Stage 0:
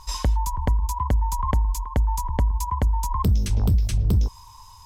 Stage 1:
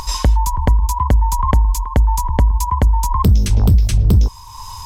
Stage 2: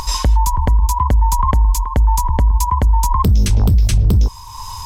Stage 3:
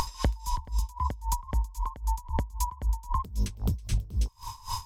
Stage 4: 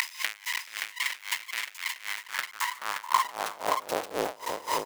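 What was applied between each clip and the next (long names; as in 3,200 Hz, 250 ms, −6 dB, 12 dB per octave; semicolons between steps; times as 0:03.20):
upward compression, threshold −29 dBFS; level +8 dB
brickwall limiter −8.5 dBFS, peak gain reduction 5 dB; level +2.5 dB
downward compressor 6 to 1, threshold −21 dBFS, peak gain reduction 12 dB; delay with a high-pass on its return 325 ms, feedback 39%, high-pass 2,700 Hz, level −9 dB; tremolo with a sine in dB 3.8 Hz, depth 22 dB; level −1 dB
each half-wave held at its own peak; high-pass filter sweep 2,100 Hz → 470 Hz, 0:02.02–0:04.15; single-tap delay 574 ms −5.5 dB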